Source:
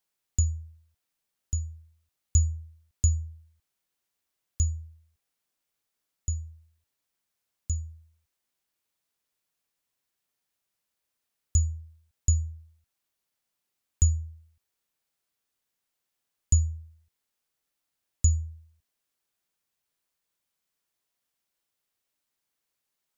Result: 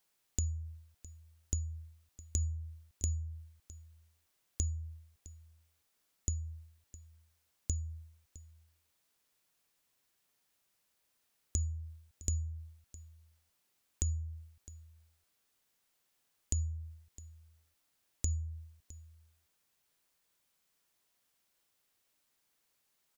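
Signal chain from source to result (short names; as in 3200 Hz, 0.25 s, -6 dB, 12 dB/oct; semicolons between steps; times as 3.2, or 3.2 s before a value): limiter -18 dBFS, peak gain reduction 8 dB; compressor, threshold -37 dBFS, peak gain reduction 14 dB; on a send: echo 0.66 s -18.5 dB; on the sum: gain +5 dB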